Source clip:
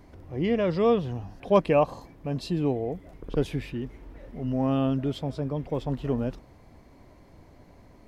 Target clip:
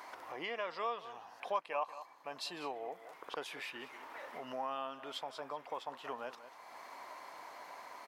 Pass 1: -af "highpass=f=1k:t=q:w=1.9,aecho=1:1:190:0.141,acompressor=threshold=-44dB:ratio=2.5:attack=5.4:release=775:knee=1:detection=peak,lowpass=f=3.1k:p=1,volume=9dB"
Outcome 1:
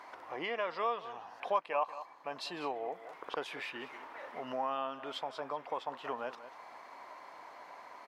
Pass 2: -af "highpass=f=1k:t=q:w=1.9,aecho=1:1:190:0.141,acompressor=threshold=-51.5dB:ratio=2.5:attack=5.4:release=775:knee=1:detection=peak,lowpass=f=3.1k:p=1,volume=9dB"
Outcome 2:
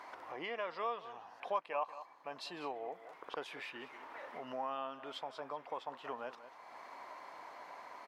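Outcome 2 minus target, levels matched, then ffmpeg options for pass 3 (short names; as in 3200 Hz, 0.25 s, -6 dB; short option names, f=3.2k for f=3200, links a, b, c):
4000 Hz band -3.0 dB
-af "highpass=f=1k:t=q:w=1.9,aecho=1:1:190:0.141,acompressor=threshold=-51.5dB:ratio=2.5:attack=5.4:release=775:knee=1:detection=peak,volume=9dB"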